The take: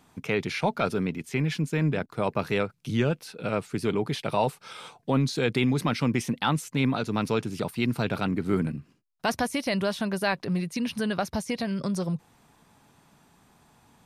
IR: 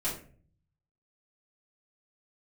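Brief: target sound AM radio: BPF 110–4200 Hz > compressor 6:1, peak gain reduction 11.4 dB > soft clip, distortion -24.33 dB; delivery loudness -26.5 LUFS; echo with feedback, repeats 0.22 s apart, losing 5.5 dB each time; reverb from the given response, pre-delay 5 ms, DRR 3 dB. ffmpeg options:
-filter_complex "[0:a]aecho=1:1:220|440|660|880|1100|1320|1540:0.531|0.281|0.149|0.079|0.0419|0.0222|0.0118,asplit=2[a][b];[1:a]atrim=start_sample=2205,adelay=5[c];[b][c]afir=irnorm=-1:irlink=0,volume=-8.5dB[d];[a][d]amix=inputs=2:normalize=0,highpass=110,lowpass=4.2k,acompressor=threshold=-28dB:ratio=6,asoftclip=threshold=-20.5dB,volume=6dB"

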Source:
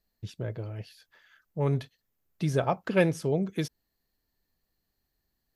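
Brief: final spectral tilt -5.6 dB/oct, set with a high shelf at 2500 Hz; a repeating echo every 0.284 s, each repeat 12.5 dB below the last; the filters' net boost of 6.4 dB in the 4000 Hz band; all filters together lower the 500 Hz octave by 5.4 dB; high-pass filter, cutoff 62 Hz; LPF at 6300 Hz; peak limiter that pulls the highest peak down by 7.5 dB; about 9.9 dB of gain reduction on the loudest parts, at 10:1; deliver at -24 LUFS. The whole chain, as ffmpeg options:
-af "highpass=62,lowpass=6.3k,equalizer=f=500:t=o:g=-7,highshelf=f=2.5k:g=5,equalizer=f=4k:t=o:g=4.5,acompressor=threshold=-29dB:ratio=10,alimiter=level_in=2dB:limit=-24dB:level=0:latency=1,volume=-2dB,aecho=1:1:284|568|852:0.237|0.0569|0.0137,volume=15dB"

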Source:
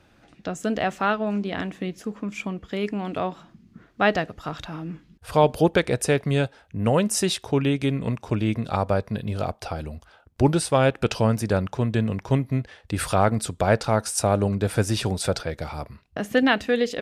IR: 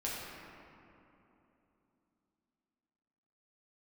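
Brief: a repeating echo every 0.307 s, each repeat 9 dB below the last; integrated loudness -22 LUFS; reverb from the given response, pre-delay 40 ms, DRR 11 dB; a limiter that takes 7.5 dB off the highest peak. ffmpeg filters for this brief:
-filter_complex "[0:a]alimiter=limit=-13.5dB:level=0:latency=1,aecho=1:1:307|614|921|1228:0.355|0.124|0.0435|0.0152,asplit=2[a][b];[1:a]atrim=start_sample=2205,adelay=40[c];[b][c]afir=irnorm=-1:irlink=0,volume=-15dB[d];[a][d]amix=inputs=2:normalize=0,volume=3.5dB"

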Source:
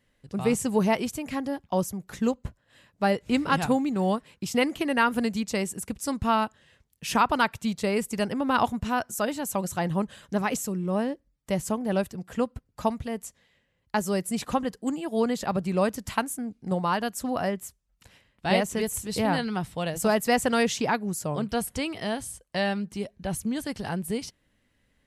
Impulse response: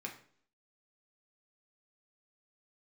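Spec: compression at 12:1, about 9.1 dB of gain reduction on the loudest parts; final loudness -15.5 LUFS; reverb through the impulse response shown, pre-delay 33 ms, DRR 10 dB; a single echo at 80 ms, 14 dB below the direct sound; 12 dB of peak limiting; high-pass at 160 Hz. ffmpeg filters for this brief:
-filter_complex "[0:a]highpass=160,acompressor=threshold=-27dB:ratio=12,alimiter=level_in=0.5dB:limit=-24dB:level=0:latency=1,volume=-0.5dB,aecho=1:1:80:0.2,asplit=2[a][b];[1:a]atrim=start_sample=2205,adelay=33[c];[b][c]afir=irnorm=-1:irlink=0,volume=-9.5dB[d];[a][d]amix=inputs=2:normalize=0,volume=19dB"

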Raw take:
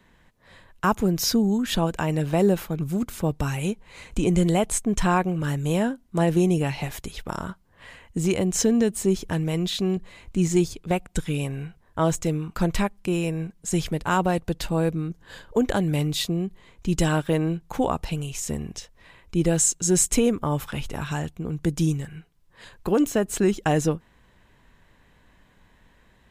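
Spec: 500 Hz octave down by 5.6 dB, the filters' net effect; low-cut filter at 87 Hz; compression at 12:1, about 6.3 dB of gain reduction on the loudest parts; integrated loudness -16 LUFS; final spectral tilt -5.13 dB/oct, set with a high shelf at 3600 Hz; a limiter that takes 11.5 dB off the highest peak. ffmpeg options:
-af "highpass=87,equalizer=f=500:t=o:g=-7.5,highshelf=f=3.6k:g=-6,acompressor=threshold=-24dB:ratio=12,volume=19dB,alimiter=limit=-6dB:level=0:latency=1"

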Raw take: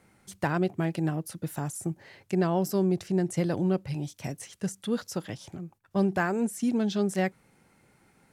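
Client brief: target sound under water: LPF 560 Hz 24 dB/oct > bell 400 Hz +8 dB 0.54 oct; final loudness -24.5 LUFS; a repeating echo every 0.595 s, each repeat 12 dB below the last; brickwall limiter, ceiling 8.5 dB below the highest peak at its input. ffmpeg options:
-af "alimiter=limit=-22.5dB:level=0:latency=1,lowpass=f=560:w=0.5412,lowpass=f=560:w=1.3066,equalizer=f=400:t=o:w=0.54:g=8,aecho=1:1:595|1190|1785:0.251|0.0628|0.0157,volume=6dB"

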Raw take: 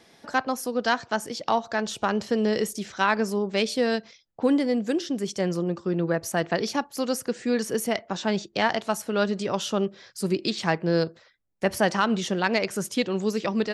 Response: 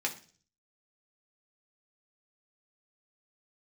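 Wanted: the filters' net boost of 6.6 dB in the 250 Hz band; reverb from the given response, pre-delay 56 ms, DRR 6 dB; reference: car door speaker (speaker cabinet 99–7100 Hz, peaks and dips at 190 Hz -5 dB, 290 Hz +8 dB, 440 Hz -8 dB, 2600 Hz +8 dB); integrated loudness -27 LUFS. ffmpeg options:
-filter_complex "[0:a]equalizer=f=250:t=o:g=6,asplit=2[a][b];[1:a]atrim=start_sample=2205,adelay=56[c];[b][c]afir=irnorm=-1:irlink=0,volume=-11dB[d];[a][d]amix=inputs=2:normalize=0,highpass=99,equalizer=f=190:t=q:w=4:g=-5,equalizer=f=290:t=q:w=4:g=8,equalizer=f=440:t=q:w=4:g=-8,equalizer=f=2.6k:t=q:w=4:g=8,lowpass=f=7.1k:w=0.5412,lowpass=f=7.1k:w=1.3066,volume=-5dB"

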